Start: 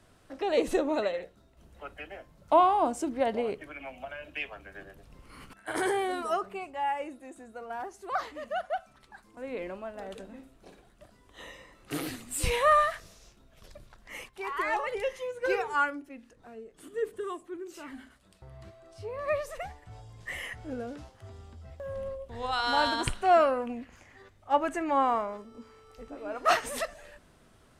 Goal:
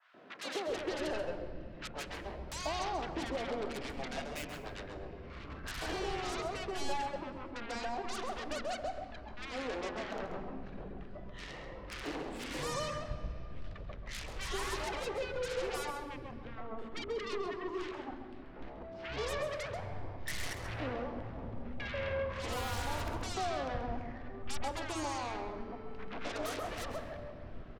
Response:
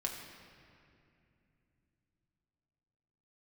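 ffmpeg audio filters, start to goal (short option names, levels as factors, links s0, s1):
-filter_complex "[0:a]lowpass=6200,highshelf=f=4400:g=-10,acompressor=threshold=0.0158:ratio=6,asoftclip=type=hard:threshold=0.0251,adynamicsmooth=sensitivity=7.5:basefreq=3200,aeval=exprs='0.0251*(cos(1*acos(clip(val(0)/0.0251,-1,1)))-cos(1*PI/2))+0.0126*(cos(7*acos(clip(val(0)/0.0251,-1,1)))-cos(7*PI/2))':c=same,acrossover=split=200|1200[s0][s1][s2];[s1]adelay=140[s3];[s0]adelay=670[s4];[s4][s3][s2]amix=inputs=3:normalize=0,asplit=2[s5][s6];[1:a]atrim=start_sample=2205,lowshelf=f=230:g=11.5,adelay=133[s7];[s6][s7]afir=irnorm=-1:irlink=0,volume=0.335[s8];[s5][s8]amix=inputs=2:normalize=0,adynamicequalizer=threshold=0.00178:dfrequency=1800:dqfactor=0.7:tfrequency=1800:tqfactor=0.7:attack=5:release=100:ratio=0.375:range=2:mode=cutabove:tftype=highshelf,volume=1.12"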